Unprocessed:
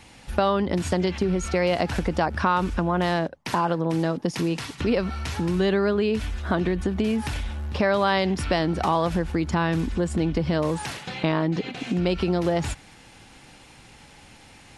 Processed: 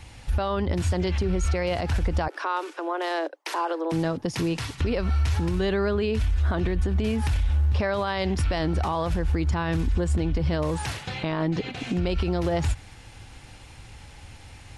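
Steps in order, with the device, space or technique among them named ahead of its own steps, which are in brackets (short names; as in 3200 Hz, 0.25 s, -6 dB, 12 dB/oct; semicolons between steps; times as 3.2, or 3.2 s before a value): car stereo with a boomy subwoofer (resonant low shelf 130 Hz +9.5 dB, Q 1.5; limiter -17 dBFS, peak gain reduction 9.5 dB); 2.28–3.92 steep high-pass 300 Hz 96 dB/oct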